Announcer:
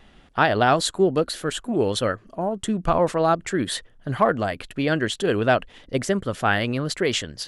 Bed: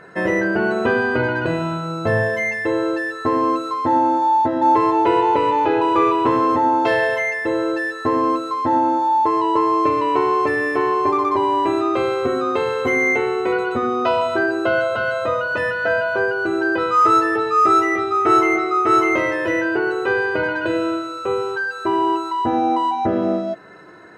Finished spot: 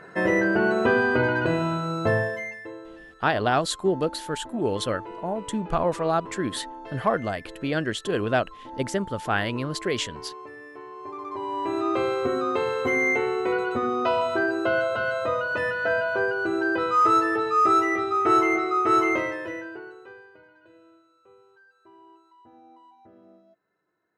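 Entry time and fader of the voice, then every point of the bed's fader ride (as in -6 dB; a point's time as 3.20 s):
2.85 s, -4.0 dB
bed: 2.07 s -2.5 dB
2.87 s -23 dB
10.90 s -23 dB
11.90 s -5 dB
19.11 s -5 dB
20.46 s -34 dB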